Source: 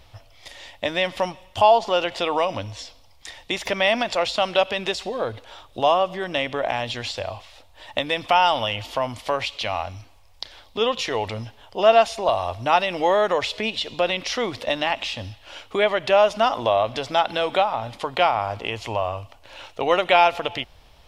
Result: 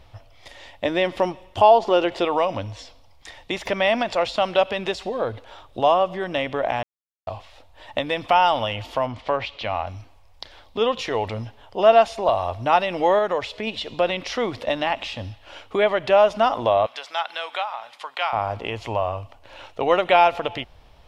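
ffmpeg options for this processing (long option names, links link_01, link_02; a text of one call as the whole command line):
ffmpeg -i in.wav -filter_complex "[0:a]asettb=1/sr,asplit=3[link_01][link_02][link_03];[link_01]atrim=end=0.844[link_04];[link_02]atrim=start=0.84:end=2.25,asetpts=PTS-STARTPTS,afade=type=in:duration=0.004:curve=qsin,afade=type=out:start_time=1.406:duration=0.004:curve=qsin,equalizer=frequency=360:width_type=o:width=0.57:gain=8[link_05];[link_03]atrim=start=2.246[link_06];[link_04][link_05]acrossfade=duration=0.004:curve1=hsin:curve2=qsin[link_07];[link_07][link_06]acrossfade=duration=0.004:curve1=qsin:curve2=hsin,asettb=1/sr,asplit=3[link_08][link_09][link_10];[link_08]atrim=end=9.064[link_11];[link_09]atrim=start=9.06:end=9.87,asetpts=PTS-STARTPTS,afade=type=in:duration=0.004:curve=qsin,afade=type=out:start_time=0.806:duration=0.004:curve=qsin,lowpass=4100[link_12];[link_10]atrim=start=9.866[link_13];[link_11][link_12]acrossfade=duration=0.004:curve1=hsin:curve2=qsin[link_14];[link_14][link_13]acrossfade=duration=0.004:curve1=qsin:curve2=hsin,asettb=1/sr,asplit=3[link_15][link_16][link_17];[link_15]atrim=end=16.864[link_18];[link_16]atrim=start=16.86:end=18.33,asetpts=PTS-STARTPTS,afade=type=in:duration=0.004:curve=qsin,afade=type=out:start_time=1.466:duration=0.004:curve=qsin,highpass=1200[link_19];[link_17]atrim=start=18.326[link_20];[link_18][link_19]acrossfade=duration=0.004:curve1=hsin:curve2=qsin[link_21];[link_21][link_20]acrossfade=duration=0.004:curve1=qsin:curve2=hsin,asplit=5[link_22][link_23][link_24][link_25][link_26];[link_22]atrim=end=6.83,asetpts=PTS-STARTPTS,afade=type=out:start_time=6.826:duration=0.004:curve=hsin[link_27];[link_23]atrim=start=6.83:end=7.27,asetpts=PTS-STARTPTS,volume=0[link_28];[link_24]atrim=start=7.27:end=13.192,asetpts=PTS-STARTPTS,afade=type=in:duration=0.004:curve=hsin[link_29];[link_25]atrim=start=13.188:end=13.672,asetpts=PTS-STARTPTS,volume=-3dB[link_30];[link_26]atrim=start=13.668[link_31];[link_27][link_28][link_29]concat=n=3:v=0:a=1[link_32];[link_32][link_30]acrossfade=duration=0.004:curve1=hsin:curve2=hsin[link_33];[link_33][link_31]acrossfade=duration=0.004:curve1=hsin:curve2=hsin,highshelf=frequency=2700:gain=-8.5,volume=1.5dB" out.wav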